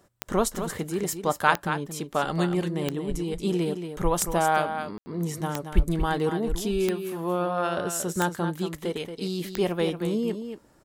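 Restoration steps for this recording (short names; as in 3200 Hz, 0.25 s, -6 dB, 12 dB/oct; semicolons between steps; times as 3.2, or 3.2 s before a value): de-click; room tone fill 4.98–5.06; inverse comb 0.229 s -8.5 dB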